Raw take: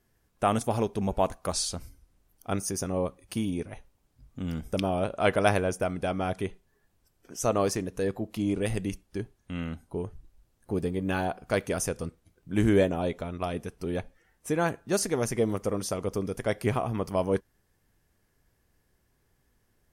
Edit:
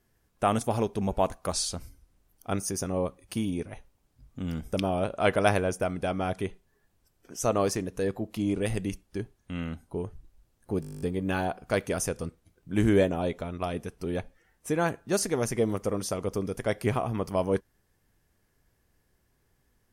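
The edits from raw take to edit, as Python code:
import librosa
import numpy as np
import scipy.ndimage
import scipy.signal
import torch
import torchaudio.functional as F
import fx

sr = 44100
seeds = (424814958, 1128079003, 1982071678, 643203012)

y = fx.edit(x, sr, fx.stutter(start_s=10.81, slice_s=0.02, count=11), tone=tone)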